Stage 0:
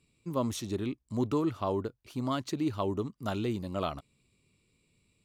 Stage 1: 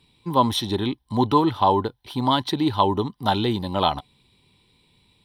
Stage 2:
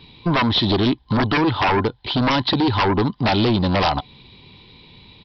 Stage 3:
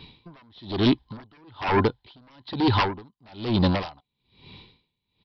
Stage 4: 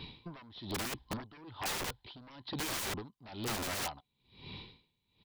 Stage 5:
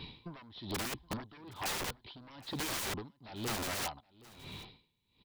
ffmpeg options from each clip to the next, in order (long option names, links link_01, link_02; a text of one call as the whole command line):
ffmpeg -i in.wav -af "superequalizer=9b=3.98:11b=1.58:13b=3.16:15b=0.282,volume=8.5dB" out.wav
ffmpeg -i in.wav -af "acompressor=threshold=-27dB:ratio=2.5,aresample=11025,aeval=exprs='0.2*sin(PI/2*3.55*val(0)/0.2)':channel_layout=same,aresample=44100" out.wav
ffmpeg -i in.wav -af "aeval=exprs='val(0)*pow(10,-37*(0.5-0.5*cos(2*PI*1.1*n/s))/20)':channel_layout=same" out.wav
ffmpeg -i in.wav -af "areverse,acompressor=threshold=-30dB:ratio=5,areverse,aeval=exprs='(mod(39.8*val(0)+1,2)-1)/39.8':channel_layout=same" out.wav
ffmpeg -i in.wav -af "aecho=1:1:770:0.0841" out.wav